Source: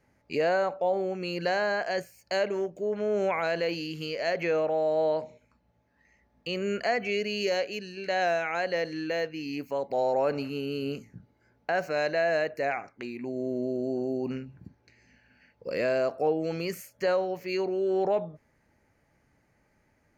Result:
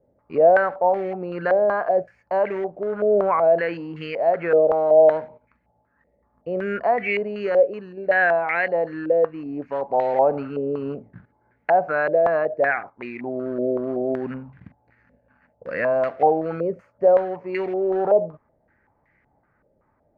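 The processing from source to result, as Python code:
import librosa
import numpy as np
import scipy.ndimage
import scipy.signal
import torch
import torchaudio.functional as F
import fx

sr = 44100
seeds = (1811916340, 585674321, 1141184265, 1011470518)

p1 = fx.peak_eq(x, sr, hz=380.0, db=-9.0, octaves=0.37, at=(14.26, 16.11))
p2 = fx.quant_companded(p1, sr, bits=4)
p3 = p1 + (p2 * librosa.db_to_amplitude(-9.0))
y = fx.filter_held_lowpass(p3, sr, hz=5.3, low_hz=550.0, high_hz=2000.0)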